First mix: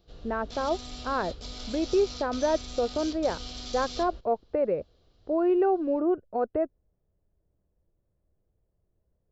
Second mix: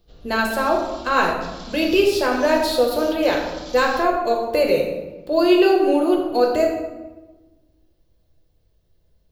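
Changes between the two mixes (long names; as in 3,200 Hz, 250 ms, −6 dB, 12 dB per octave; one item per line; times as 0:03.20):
speech: remove Bessel low-pass filter 1,100 Hz, order 4
reverb: on, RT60 1.2 s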